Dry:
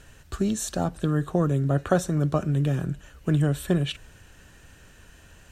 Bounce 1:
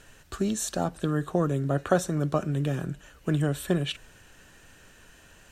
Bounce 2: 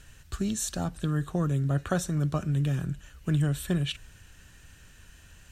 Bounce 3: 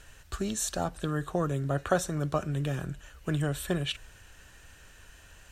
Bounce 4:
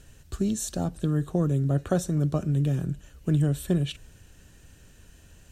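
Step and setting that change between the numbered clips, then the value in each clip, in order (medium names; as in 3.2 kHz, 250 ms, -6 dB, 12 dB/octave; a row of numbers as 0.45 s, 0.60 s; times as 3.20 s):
peaking EQ, frequency: 62 Hz, 510 Hz, 200 Hz, 1.3 kHz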